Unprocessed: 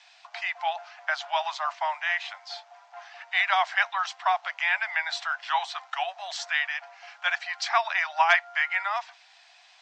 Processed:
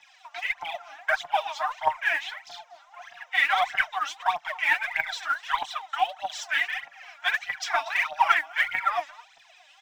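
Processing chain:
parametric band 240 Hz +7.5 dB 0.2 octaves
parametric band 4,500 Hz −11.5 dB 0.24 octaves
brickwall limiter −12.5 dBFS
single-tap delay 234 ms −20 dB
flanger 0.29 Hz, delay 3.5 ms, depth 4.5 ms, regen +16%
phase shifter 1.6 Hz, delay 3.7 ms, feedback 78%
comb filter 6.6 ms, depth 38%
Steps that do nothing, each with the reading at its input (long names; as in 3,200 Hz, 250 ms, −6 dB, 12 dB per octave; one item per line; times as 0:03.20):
parametric band 240 Hz: nothing at its input below 540 Hz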